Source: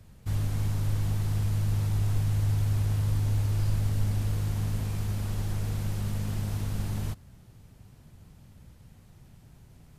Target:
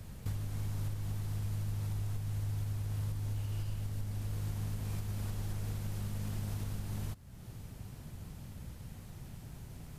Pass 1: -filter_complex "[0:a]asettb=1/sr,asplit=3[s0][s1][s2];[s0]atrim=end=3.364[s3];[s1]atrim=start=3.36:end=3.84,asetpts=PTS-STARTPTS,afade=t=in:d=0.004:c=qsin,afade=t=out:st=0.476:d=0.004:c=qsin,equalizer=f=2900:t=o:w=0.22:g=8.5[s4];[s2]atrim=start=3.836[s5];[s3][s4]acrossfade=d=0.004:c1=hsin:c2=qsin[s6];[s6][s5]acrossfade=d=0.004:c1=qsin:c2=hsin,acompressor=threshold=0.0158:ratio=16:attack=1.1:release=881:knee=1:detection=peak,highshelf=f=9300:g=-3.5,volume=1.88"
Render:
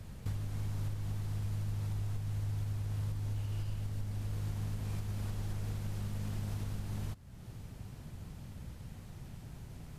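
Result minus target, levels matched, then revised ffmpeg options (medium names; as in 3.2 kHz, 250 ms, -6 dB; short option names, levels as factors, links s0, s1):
8 kHz band -3.0 dB
-filter_complex "[0:a]asettb=1/sr,asplit=3[s0][s1][s2];[s0]atrim=end=3.364[s3];[s1]atrim=start=3.36:end=3.84,asetpts=PTS-STARTPTS,afade=t=in:d=0.004:c=qsin,afade=t=out:st=0.476:d=0.004:c=qsin,equalizer=f=2900:t=o:w=0.22:g=8.5[s4];[s2]atrim=start=3.836[s5];[s3][s4]acrossfade=d=0.004:c1=hsin:c2=qsin[s6];[s6][s5]acrossfade=d=0.004:c1=qsin:c2=hsin,acompressor=threshold=0.0158:ratio=16:attack=1.1:release=881:knee=1:detection=peak,highshelf=f=9300:g=4,volume=1.88"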